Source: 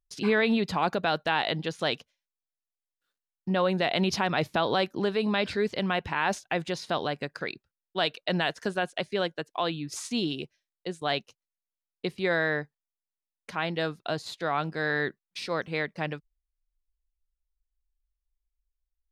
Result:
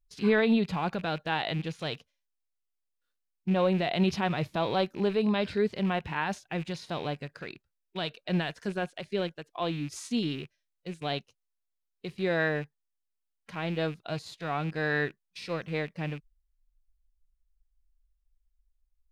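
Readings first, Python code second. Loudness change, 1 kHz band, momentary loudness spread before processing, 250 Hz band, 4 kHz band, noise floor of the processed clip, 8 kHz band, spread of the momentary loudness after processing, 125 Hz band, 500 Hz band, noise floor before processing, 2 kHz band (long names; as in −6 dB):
−1.5 dB, −4.0 dB, 11 LU, +1.0 dB, −5.0 dB, −82 dBFS, −6.0 dB, 13 LU, +2.0 dB, −1.5 dB, below −85 dBFS, −4.0 dB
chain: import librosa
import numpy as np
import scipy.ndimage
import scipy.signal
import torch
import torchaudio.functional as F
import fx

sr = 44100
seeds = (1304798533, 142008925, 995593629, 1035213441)

y = fx.rattle_buzz(x, sr, strikes_db=-43.0, level_db=-33.0)
y = fx.low_shelf(y, sr, hz=83.0, db=11.0)
y = fx.hpss(y, sr, part='percussive', gain_db=-9)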